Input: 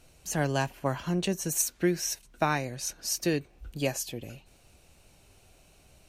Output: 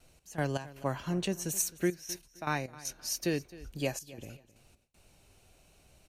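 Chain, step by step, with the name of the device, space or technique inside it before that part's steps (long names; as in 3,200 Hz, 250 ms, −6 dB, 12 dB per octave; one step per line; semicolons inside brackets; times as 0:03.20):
trance gate with a delay (gate pattern "x.x.xxxxxx." 79 BPM −12 dB; repeating echo 262 ms, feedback 26%, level −19 dB)
noise gate with hold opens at −54 dBFS
0:01.78–0:03.70: notch filter 7,700 Hz, Q 6.7
level −3.5 dB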